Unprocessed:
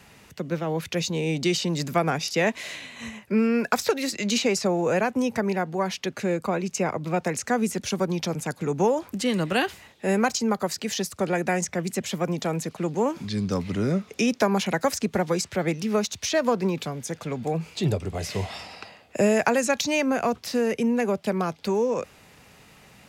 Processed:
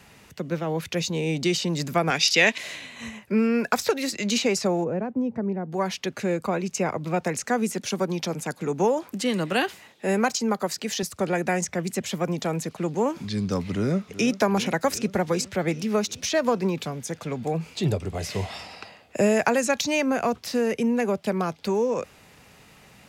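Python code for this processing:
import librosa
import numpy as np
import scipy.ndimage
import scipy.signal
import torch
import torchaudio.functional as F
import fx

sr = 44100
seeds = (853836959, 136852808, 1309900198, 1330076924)

y = fx.weighting(x, sr, curve='D', at=(2.1, 2.58))
y = fx.bandpass_q(y, sr, hz=190.0, q=0.67, at=(4.83, 5.71), fade=0.02)
y = fx.highpass(y, sr, hz=150.0, slope=12, at=(7.43, 11.03))
y = fx.echo_throw(y, sr, start_s=13.71, length_s=0.63, ms=380, feedback_pct=70, wet_db=-14.5)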